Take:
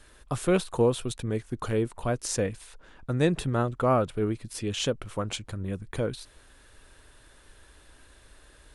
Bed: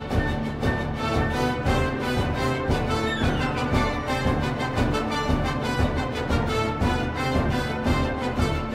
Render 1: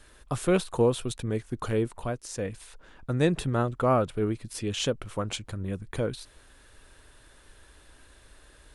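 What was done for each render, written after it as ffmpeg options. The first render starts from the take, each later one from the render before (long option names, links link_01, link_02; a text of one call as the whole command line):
ffmpeg -i in.wav -filter_complex "[0:a]asplit=3[link_01][link_02][link_03];[link_01]atrim=end=2.22,asetpts=PTS-STARTPTS,afade=type=out:start_time=1.95:duration=0.27:silence=0.375837[link_04];[link_02]atrim=start=2.22:end=2.33,asetpts=PTS-STARTPTS,volume=-8.5dB[link_05];[link_03]atrim=start=2.33,asetpts=PTS-STARTPTS,afade=type=in:duration=0.27:silence=0.375837[link_06];[link_04][link_05][link_06]concat=n=3:v=0:a=1" out.wav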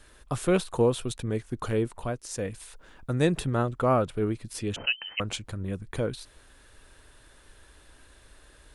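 ffmpeg -i in.wav -filter_complex "[0:a]asettb=1/sr,asplit=3[link_01][link_02][link_03];[link_01]atrim=end=2.314[link_04];[link_02]atrim=start=2.31:end=3.4,asetpts=PTS-STARTPTS,afade=type=in:duration=0.004:curve=qsin,afade=type=out:start_time=1.086:duration=0.004:curve=qsin,highshelf=frequency=8600:gain=7[link_05];[link_03]atrim=start=3.396[link_06];[link_04][link_05]acrossfade=duration=0.004:curve1=hsin:curve2=qsin[link_07];[link_07][link_06]acrossfade=duration=0.004:curve1=qsin:curve2=hsin,asettb=1/sr,asplit=3[link_08][link_09][link_10];[link_08]atrim=end=4.764[link_11];[link_09]atrim=start=4.76:end=5.2,asetpts=PTS-STARTPTS,afade=type=in:duration=0.004:curve=qsin,afade=type=out:start_time=0.436:duration=0.004:curve=qsin,lowpass=frequency=2600:width_type=q:width=0.5098,lowpass=frequency=2600:width_type=q:width=0.6013,lowpass=frequency=2600:width_type=q:width=0.9,lowpass=frequency=2600:width_type=q:width=2.563,afreqshift=-3100[link_12];[link_10]atrim=start=5.196[link_13];[link_11][link_12]acrossfade=duration=0.004:curve1=hsin:curve2=qsin[link_14];[link_14][link_13]acrossfade=duration=0.004:curve1=qsin:curve2=hsin" out.wav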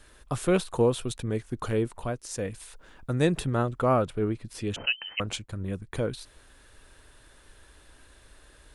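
ffmpeg -i in.wav -filter_complex "[0:a]asettb=1/sr,asplit=3[link_01][link_02][link_03];[link_01]atrim=end=4.134[link_04];[link_02]atrim=start=4.13:end=4.59,asetpts=PTS-STARTPTS,afade=type=in:duration=0.004:curve=qsin,afade=type=out:start_time=0.456:duration=0.004:curve=qsin,highshelf=frequency=4600:gain=-7.5[link_05];[link_03]atrim=start=4.586[link_06];[link_04][link_05]acrossfade=duration=0.004:curve1=hsin:curve2=qsin[link_07];[link_07][link_06]acrossfade=duration=0.004:curve1=qsin:curve2=hsin,asettb=1/sr,asplit=3[link_08][link_09][link_10];[link_08]atrim=end=5.264[link_11];[link_09]atrim=start=5.26:end=5.92,asetpts=PTS-STARTPTS,afade=type=in:duration=0.004:curve=qsin,afade=type=out:start_time=0.656:duration=0.004:curve=qsin,agate=range=-33dB:threshold=-39dB:ratio=3:release=100:detection=peak[link_12];[link_10]atrim=start=5.916[link_13];[link_11][link_12]acrossfade=duration=0.004:curve1=hsin:curve2=qsin[link_14];[link_14][link_13]acrossfade=duration=0.004:curve1=qsin:curve2=hsin" out.wav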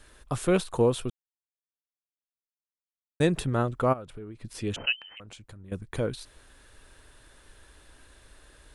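ffmpeg -i in.wav -filter_complex "[0:a]asplit=3[link_01][link_02][link_03];[link_01]afade=type=out:start_time=3.92:duration=0.02[link_04];[link_02]acompressor=threshold=-40dB:ratio=4:attack=3.2:release=140:knee=1:detection=peak,afade=type=in:start_time=3.92:duration=0.02,afade=type=out:start_time=4.42:duration=0.02[link_05];[link_03]afade=type=in:start_time=4.42:duration=0.02[link_06];[link_04][link_05][link_06]amix=inputs=3:normalize=0,asettb=1/sr,asplit=3[link_07][link_08][link_09];[link_07]atrim=end=5.004[link_10];[link_08]atrim=start=5:end=5.72,asetpts=PTS-STARTPTS,afade=type=in:duration=0.004:curve=qsin,afade=type=out:start_time=0.716:duration=0.004:curve=qsin,acompressor=threshold=-43dB:ratio=8:attack=3.2:release=140:knee=1:detection=peak[link_11];[link_09]atrim=start=5.716[link_12];[link_10][link_11]acrossfade=duration=0.004:curve1=hsin:curve2=qsin[link_13];[link_13][link_12]acrossfade=duration=0.004:curve1=qsin:curve2=hsin,asplit=3[link_14][link_15][link_16];[link_14]atrim=end=1.1,asetpts=PTS-STARTPTS,afade=type=out:start_time=1.096:duration=0.004:curve=hsin[link_17];[link_15]atrim=start=1.1:end=3.2,asetpts=PTS-STARTPTS,volume=0[link_18];[link_16]atrim=start=3.2,asetpts=PTS-STARTPTS,afade=type=in:duration=0.004:curve=hsin[link_19];[link_17][link_18][link_19]concat=n=3:v=0:a=1" out.wav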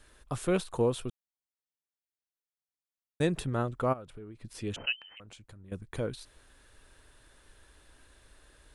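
ffmpeg -i in.wav -af "volume=-4.5dB" out.wav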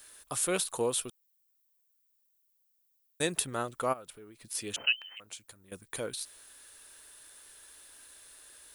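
ffmpeg -i in.wav -af "aemphasis=mode=production:type=riaa" out.wav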